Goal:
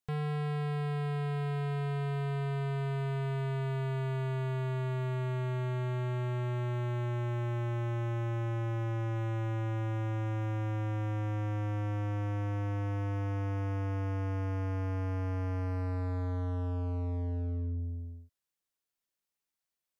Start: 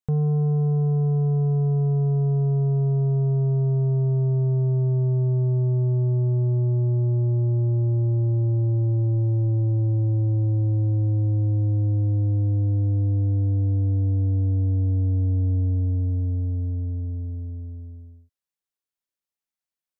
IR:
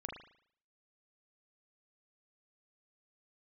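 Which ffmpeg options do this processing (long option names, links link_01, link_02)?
-filter_complex "[0:a]asettb=1/sr,asplit=3[link_01][link_02][link_03];[link_01]atrim=end=7.064[link_04];[link_02]atrim=start=7.06:end=9.16,asetpts=PTS-STARTPTS,afade=type=in:duration=0.004:curve=qsin,afade=type=out:start_time=2.096:duration=0.004:curve=qsin,bandreject=frequency=800:width=12[link_05];[link_03]atrim=start=9.156[link_06];[link_04][link_05]acrossfade=duration=0.004:curve1=hsin:curve2=qsin[link_07];[link_07][link_06]acrossfade=duration=0.004:curve1=qsin:curve2=hsin,volume=34dB,asoftclip=hard,volume=-34dB,volume=1.5dB"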